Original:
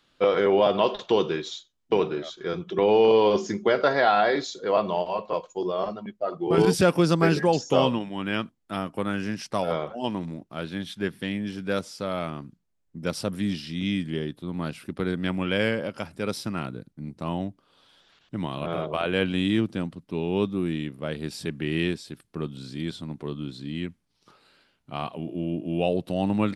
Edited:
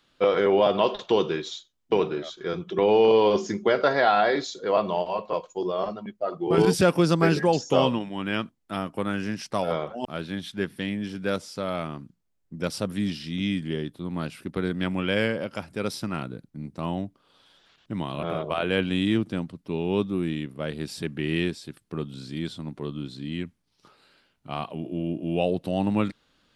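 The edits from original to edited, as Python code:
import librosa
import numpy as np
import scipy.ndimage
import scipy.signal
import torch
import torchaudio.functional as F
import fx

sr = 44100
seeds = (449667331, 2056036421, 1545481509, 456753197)

y = fx.edit(x, sr, fx.cut(start_s=10.05, length_s=0.43), tone=tone)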